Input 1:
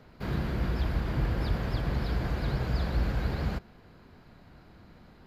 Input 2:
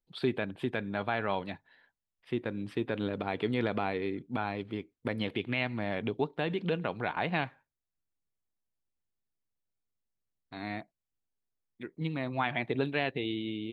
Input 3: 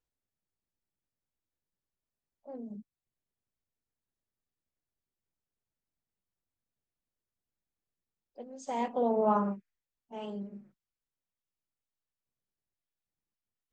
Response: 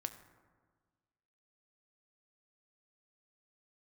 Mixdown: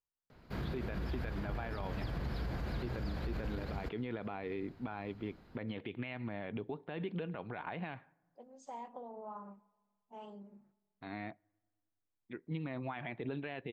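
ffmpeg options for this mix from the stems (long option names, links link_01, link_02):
-filter_complex "[0:a]adelay=300,volume=-5.5dB[link_01];[1:a]lowpass=3000,adelay=500,volume=-4dB,asplit=2[link_02][link_03];[link_03]volume=-23dB[link_04];[2:a]acompressor=threshold=-35dB:ratio=10,equalizer=frequency=970:width_type=o:width=0.92:gain=7.5,volume=-13.5dB,asplit=2[link_05][link_06];[link_06]volume=-9dB[link_07];[3:a]atrim=start_sample=2205[link_08];[link_04][link_07]amix=inputs=2:normalize=0[link_09];[link_09][link_08]afir=irnorm=-1:irlink=0[link_10];[link_01][link_02][link_05][link_10]amix=inputs=4:normalize=0,alimiter=level_in=6dB:limit=-24dB:level=0:latency=1:release=51,volume=-6dB"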